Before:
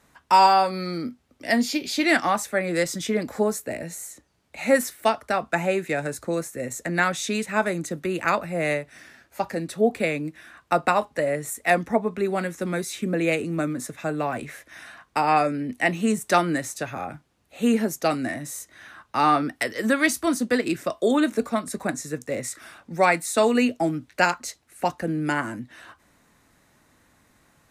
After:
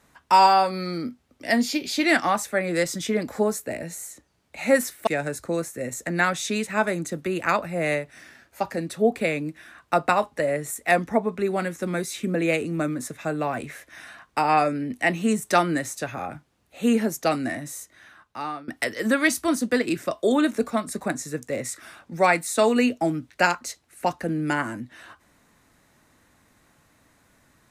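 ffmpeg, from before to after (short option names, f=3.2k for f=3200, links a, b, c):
-filter_complex "[0:a]asplit=3[a][b][c];[a]atrim=end=5.072[d];[b]atrim=start=5.858:end=19.47,asetpts=PTS-STARTPTS,afade=t=out:st=12.462:d=1.15:silence=0.0841395[e];[c]atrim=start=19.47,asetpts=PTS-STARTPTS,afade=t=in:d=0.004:c=hsin:silence=0.0841395[f];[e][f]concat=n=2:v=0:a=1[g];[d][g]acrossfade=d=0.004:c1=hsin:c2=hsin"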